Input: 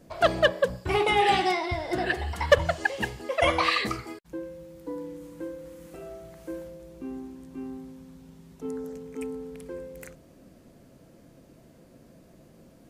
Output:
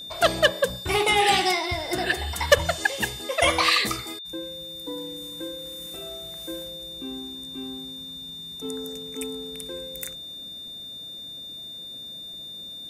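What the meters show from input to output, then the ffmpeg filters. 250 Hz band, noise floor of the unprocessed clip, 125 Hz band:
0.0 dB, −55 dBFS, 0.0 dB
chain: -af "aeval=exprs='val(0)+0.00708*sin(2*PI*3600*n/s)':channel_layout=same,crystalizer=i=3.5:c=0"

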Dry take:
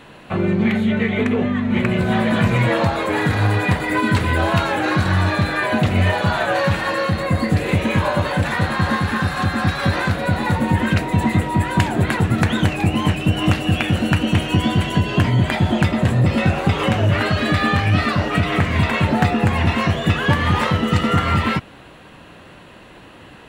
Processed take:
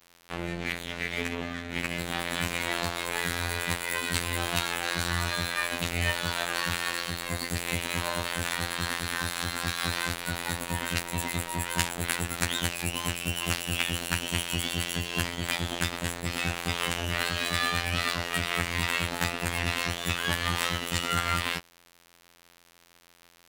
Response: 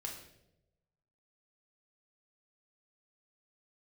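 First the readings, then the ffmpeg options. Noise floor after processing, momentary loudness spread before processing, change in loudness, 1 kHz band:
−60 dBFS, 3 LU, −11.0 dB, −12.0 dB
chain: -af "afftfilt=real='hypot(re,im)*cos(PI*b)':imag='0':win_size=2048:overlap=0.75,crystalizer=i=9.5:c=0,aeval=exprs='sgn(val(0))*max(abs(val(0))-0.0501,0)':channel_layout=same,volume=-11.5dB"

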